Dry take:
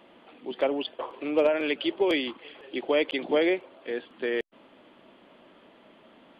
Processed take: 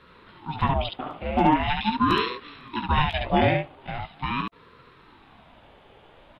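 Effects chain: early reflections 18 ms -6 dB, 70 ms -3.5 dB; ring modulator with a swept carrier 480 Hz, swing 55%, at 0.42 Hz; gain +3.5 dB

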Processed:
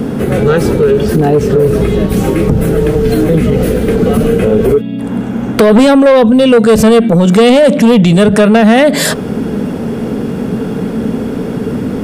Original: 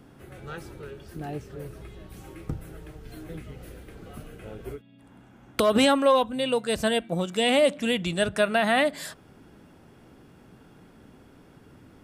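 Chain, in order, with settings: in parallel at +2 dB: compressor, threshold -33 dBFS, peak gain reduction 16.5 dB; on the sum: small resonant body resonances 220/440 Hz, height 14 dB, ringing for 35 ms; soft clip -11 dBFS, distortion -11 dB; maximiser +21 dB; gain -1 dB

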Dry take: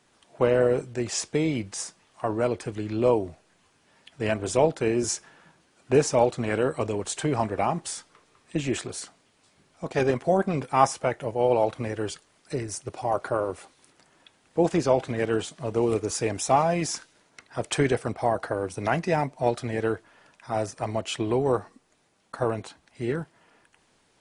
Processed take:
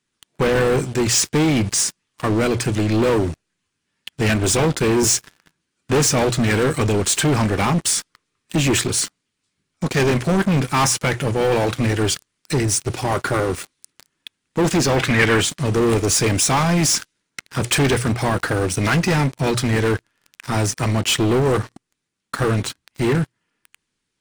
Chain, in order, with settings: bell 690 Hz -14.5 dB 1.2 oct; notches 60/120 Hz; sample leveller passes 5; 14.96–15.41 bell 2000 Hz +9.5 dB 1.4 oct

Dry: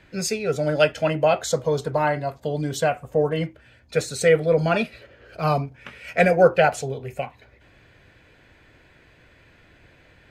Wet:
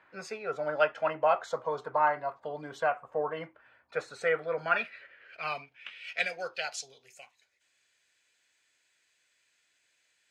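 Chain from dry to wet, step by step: band-pass sweep 1100 Hz -> 7500 Hz, 4.11–7.49; gain +2 dB

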